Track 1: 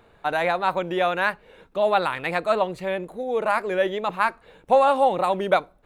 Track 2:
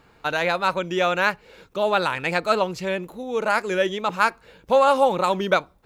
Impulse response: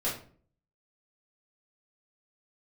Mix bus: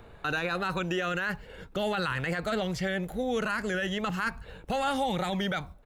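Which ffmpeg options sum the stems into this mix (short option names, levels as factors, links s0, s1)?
-filter_complex "[0:a]acrossover=split=5100[s0][s1];[s1]acompressor=threshold=0.00141:ratio=4:attack=1:release=60[s2];[s0][s2]amix=inputs=2:normalize=0,lowshelf=f=170:g=11.5,acrossover=split=340|1800[s3][s4][s5];[s3]acompressor=threshold=0.00282:ratio=4[s6];[s4]acompressor=threshold=0.0316:ratio=4[s7];[s5]acompressor=threshold=0.0224:ratio=4[s8];[s6][s7][s8]amix=inputs=3:normalize=0,volume=1.26,asplit=2[s9][s10];[1:a]asubboost=boost=10:cutoff=150,alimiter=limit=0.168:level=0:latency=1:release=17,acrossover=split=370|2400|4900[s11][s12][s13][s14];[s11]acompressor=threshold=0.0141:ratio=4[s15];[s12]acompressor=threshold=0.0316:ratio=4[s16];[s13]acompressor=threshold=0.00501:ratio=4[s17];[s14]acompressor=threshold=0.00398:ratio=4[s18];[s15][s16][s17][s18]amix=inputs=4:normalize=0,adelay=0.5,volume=1.26[s19];[s10]apad=whole_len=258148[s20];[s19][s20]sidechaingate=range=0.0224:threshold=0.00631:ratio=16:detection=peak[s21];[s9][s21]amix=inputs=2:normalize=0,alimiter=limit=0.0944:level=0:latency=1:release=14"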